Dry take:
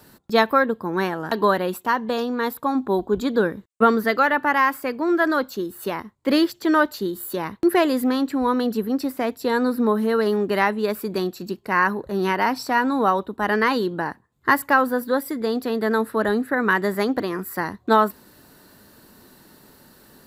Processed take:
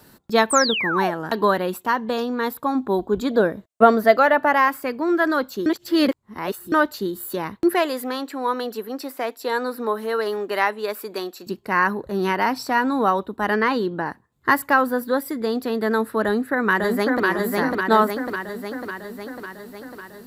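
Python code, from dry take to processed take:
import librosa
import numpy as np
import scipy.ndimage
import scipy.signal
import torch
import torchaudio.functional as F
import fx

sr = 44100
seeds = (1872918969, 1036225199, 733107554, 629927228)

y = fx.spec_paint(x, sr, seeds[0], shape='fall', start_s=0.5, length_s=0.61, low_hz=590.0, high_hz=9100.0, level_db=-24.0)
y = fx.peak_eq(y, sr, hz=650.0, db=14.0, octaves=0.33, at=(3.31, 4.68))
y = fx.highpass(y, sr, hz=440.0, slope=12, at=(7.74, 11.47))
y = fx.high_shelf(y, sr, hz=5200.0, db=-9.0, at=(13.55, 14.07))
y = fx.echo_throw(y, sr, start_s=16.24, length_s=1.01, ms=550, feedback_pct=65, wet_db=-2.0)
y = fx.edit(y, sr, fx.reverse_span(start_s=5.66, length_s=1.06), tone=tone)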